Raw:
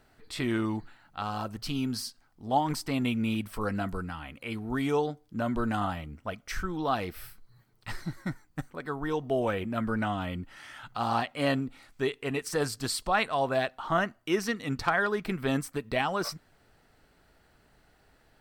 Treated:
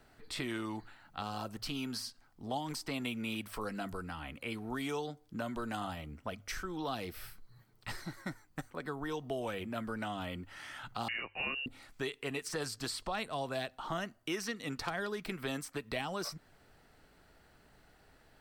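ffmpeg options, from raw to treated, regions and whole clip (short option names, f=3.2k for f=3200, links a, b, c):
-filter_complex "[0:a]asettb=1/sr,asplit=3[a][b][c];[a]atrim=end=11.084[d];[b]atrim=start=11.08:end=11.66,asetpts=PTS-STARTPTS,afade=t=in:d=0.004:c=qsin,afade=t=out:st=0.576:d=0.004:c=qsin,bandreject=f=660:w=6,lowpass=f=2.6k:t=q:w=0.5098,lowpass=f=2.6k:t=q:w=0.6013,lowpass=f=2.6k:t=q:w=0.9,lowpass=f=2.6k:t=q:w=2.563,afreqshift=-3000[e];[c]atrim=start=11.656[f];[d][e]acrossfade=d=0.004:c1=hsin:c2=qsin[g];[g][f]acrossfade=d=0.004:c1=qsin:c2=hsin,bandreject=f=50:t=h:w=6,bandreject=f=100:t=h:w=6,acrossover=split=330|710|2900|7500[h][i][j][k][l];[h]acompressor=threshold=-44dB:ratio=4[m];[i]acompressor=threshold=-43dB:ratio=4[n];[j]acompressor=threshold=-44dB:ratio=4[o];[k]acompressor=threshold=-42dB:ratio=4[p];[l]acompressor=threshold=-51dB:ratio=4[q];[m][n][o][p][q]amix=inputs=5:normalize=0"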